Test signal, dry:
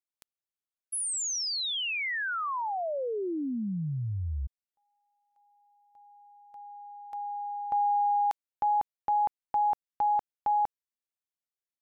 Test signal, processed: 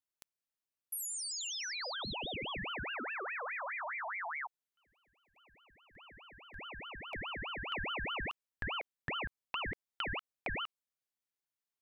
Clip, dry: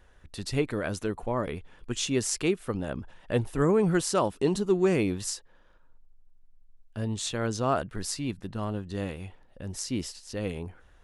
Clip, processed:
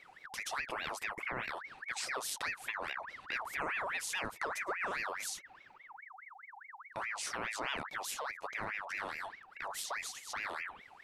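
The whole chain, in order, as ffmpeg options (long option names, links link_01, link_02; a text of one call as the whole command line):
ffmpeg -i in.wav -af "acompressor=threshold=-44dB:ratio=3:attack=82:release=40:detection=rms,aeval=exprs='val(0)*sin(2*PI*1500*n/s+1500*0.5/4.8*sin(2*PI*4.8*n/s))':channel_layout=same,volume=2dB" out.wav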